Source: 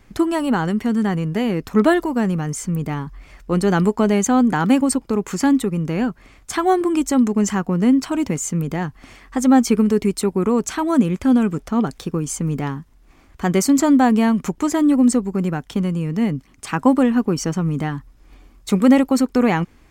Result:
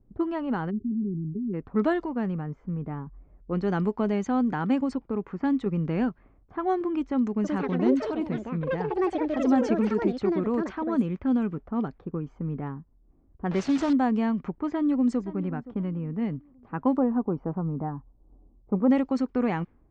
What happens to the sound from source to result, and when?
0.7–1.54 spectral delete 420–9300 Hz
5.66–6.09 gain +4 dB
7.29–12.35 echoes that change speed 0.152 s, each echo +6 st, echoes 2
13.51–13.93 delta modulation 64 kbps, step -17 dBFS
14.67–15.21 echo throw 0.52 s, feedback 35%, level -15.5 dB
16.97–18.91 synth low-pass 880 Hz, resonance Q 1.8
whole clip: low-pass opened by the level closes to 400 Hz, open at -11 dBFS; LPF 6200 Hz 24 dB/oct; high shelf 3200 Hz -10.5 dB; gain -9 dB

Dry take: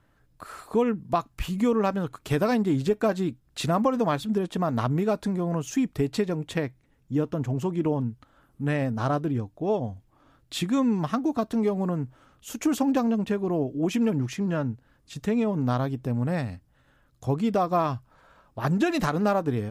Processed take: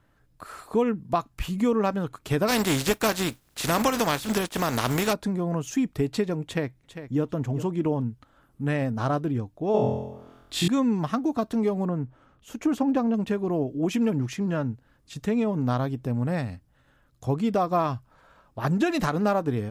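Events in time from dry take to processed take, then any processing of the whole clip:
2.47–5.12 spectral contrast lowered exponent 0.52
6.44–7.22 echo throw 0.4 s, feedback 10%, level -11.5 dB
9.72–10.68 flutter echo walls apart 4 m, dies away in 0.91 s
11.85–13.14 high shelf 3300 Hz -11.5 dB

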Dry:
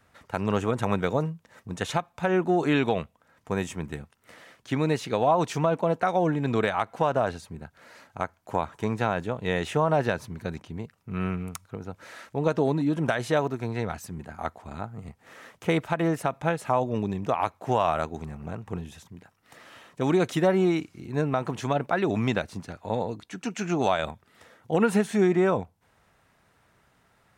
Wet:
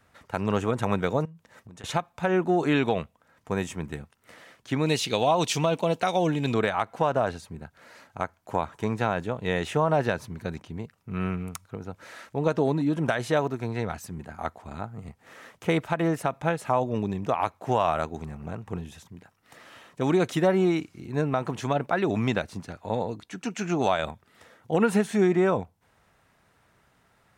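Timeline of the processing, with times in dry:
1.25–1.84 compressor 12:1, threshold -42 dBFS
4.86–6.54 resonant high shelf 2200 Hz +8.5 dB, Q 1.5

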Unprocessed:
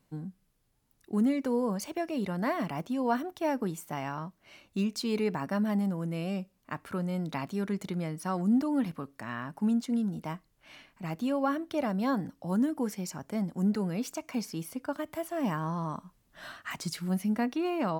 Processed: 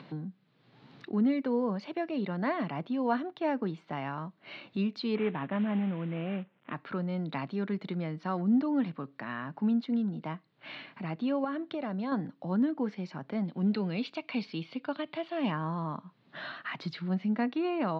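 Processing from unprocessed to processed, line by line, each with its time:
5.15–6.74 CVSD 16 kbps
11.44–12.12 compressor, threshold -30 dBFS
13.45–15.52 band shelf 3300 Hz +8.5 dB 1.2 oct
whole clip: Chebyshev band-pass 130–4100 Hz, order 4; upward compressor, threshold -34 dBFS

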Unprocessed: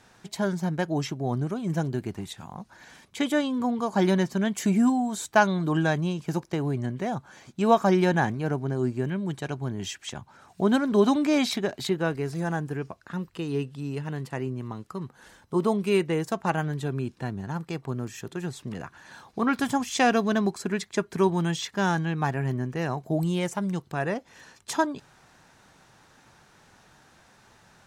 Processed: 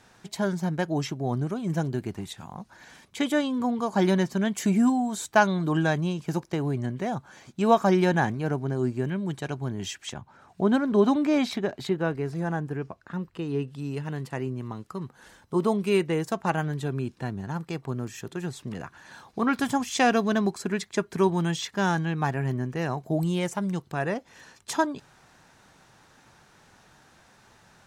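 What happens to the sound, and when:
10.14–13.68 high shelf 3300 Hz -9 dB

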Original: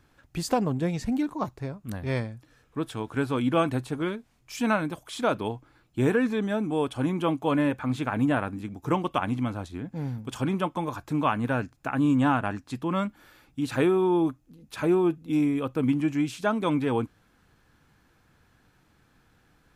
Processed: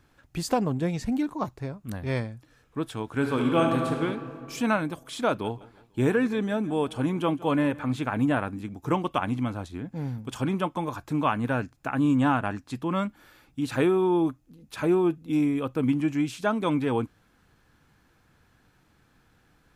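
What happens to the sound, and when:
3.14–3.98 reverb throw, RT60 2.3 s, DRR 1.5 dB
5.28–7.94 feedback echo 0.164 s, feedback 45%, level -21 dB

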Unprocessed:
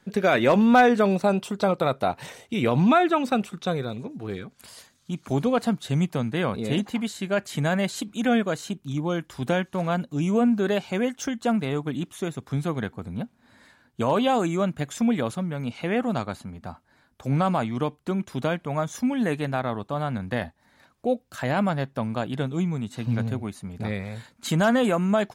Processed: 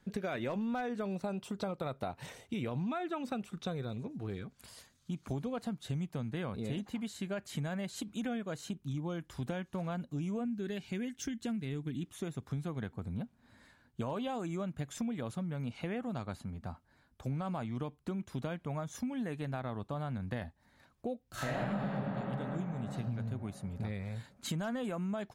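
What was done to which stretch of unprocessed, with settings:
10.45–12.06 band shelf 820 Hz -10.5 dB
21.28–21.9 reverb throw, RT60 3 s, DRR -12 dB
whole clip: low shelf 130 Hz +10.5 dB; compressor 6:1, threshold -26 dBFS; gain -8 dB

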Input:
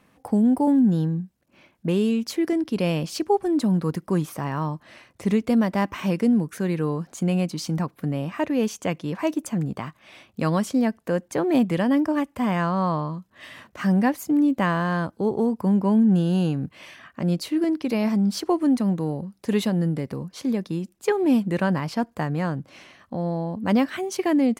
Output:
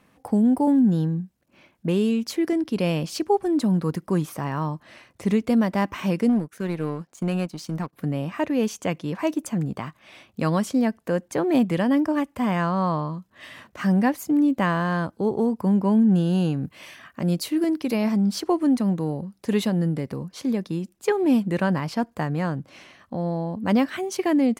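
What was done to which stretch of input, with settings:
6.29–7.93 power-law curve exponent 1.4
16.64–17.96 high shelf 8600 Hz +9.5 dB

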